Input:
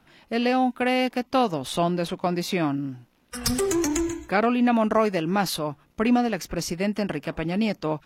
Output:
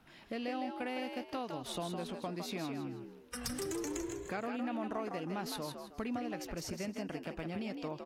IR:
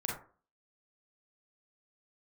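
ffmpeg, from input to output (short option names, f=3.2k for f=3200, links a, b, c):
-filter_complex "[0:a]acompressor=threshold=-37dB:ratio=3,asplit=2[a][b];[b]asplit=4[c][d][e][f];[c]adelay=159,afreqshift=63,volume=-6dB[g];[d]adelay=318,afreqshift=126,volume=-15.4dB[h];[e]adelay=477,afreqshift=189,volume=-24.7dB[i];[f]adelay=636,afreqshift=252,volume=-34.1dB[j];[g][h][i][j]amix=inputs=4:normalize=0[k];[a][k]amix=inputs=2:normalize=0,volume=-4dB"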